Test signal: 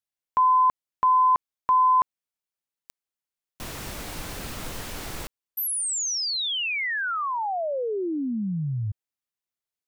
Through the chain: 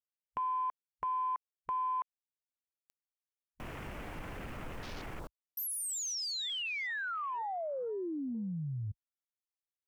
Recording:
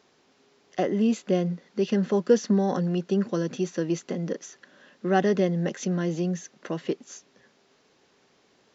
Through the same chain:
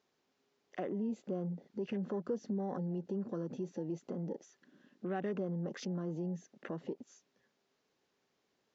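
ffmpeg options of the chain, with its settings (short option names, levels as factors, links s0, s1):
-af "acompressor=threshold=0.00891:ratio=2.5:attack=4.4:release=58:knee=6:detection=rms,afwtdn=0.00398"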